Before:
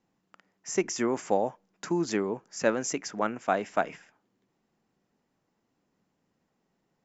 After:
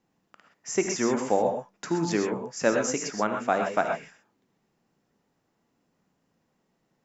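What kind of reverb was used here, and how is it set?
non-linear reverb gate 0.15 s rising, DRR 3.5 dB; gain +1.5 dB

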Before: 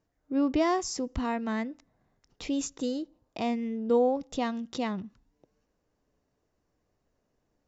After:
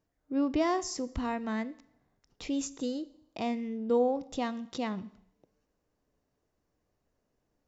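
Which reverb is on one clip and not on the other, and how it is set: Schroeder reverb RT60 0.76 s, combs from 29 ms, DRR 17.5 dB; gain -2.5 dB

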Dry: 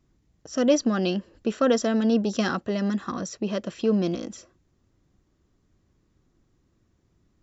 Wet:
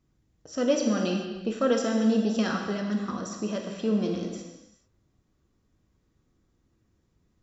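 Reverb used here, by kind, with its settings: non-linear reverb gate 0.47 s falling, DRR 1 dB; gain -5 dB

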